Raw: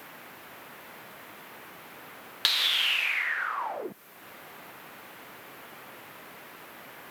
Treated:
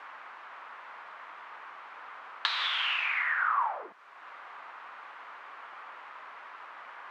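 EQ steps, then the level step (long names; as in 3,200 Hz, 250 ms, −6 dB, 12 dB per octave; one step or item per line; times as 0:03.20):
resonant band-pass 1,100 Hz, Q 2.1
high-frequency loss of the air 110 metres
spectral tilt +3 dB per octave
+6.0 dB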